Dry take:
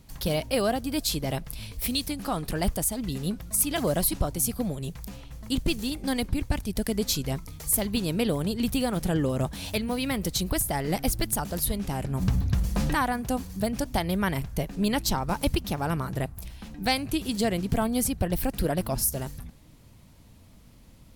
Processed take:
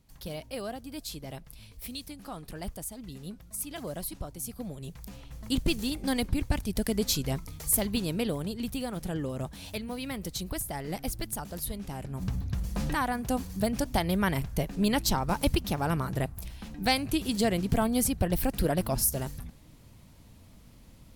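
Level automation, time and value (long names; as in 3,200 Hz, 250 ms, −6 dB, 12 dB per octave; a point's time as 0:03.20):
0:04.39 −11.5 dB
0:05.45 −1 dB
0:07.79 −1 dB
0:08.69 −7.5 dB
0:12.49 −7.5 dB
0:13.41 −0.5 dB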